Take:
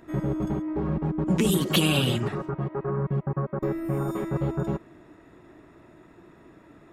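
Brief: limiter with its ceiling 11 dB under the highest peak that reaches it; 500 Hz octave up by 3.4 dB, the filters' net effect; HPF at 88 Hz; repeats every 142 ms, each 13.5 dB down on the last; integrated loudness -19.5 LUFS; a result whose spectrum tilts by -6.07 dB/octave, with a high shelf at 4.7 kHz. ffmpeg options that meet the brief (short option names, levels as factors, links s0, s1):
-af "highpass=88,equalizer=f=500:t=o:g=4.5,highshelf=f=4700:g=6,alimiter=limit=0.133:level=0:latency=1,aecho=1:1:142|284:0.211|0.0444,volume=2.51"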